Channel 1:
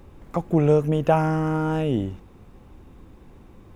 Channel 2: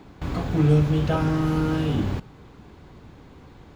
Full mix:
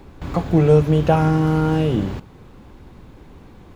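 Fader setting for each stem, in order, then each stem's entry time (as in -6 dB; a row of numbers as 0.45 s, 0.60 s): +2.0 dB, -0.5 dB; 0.00 s, 0.00 s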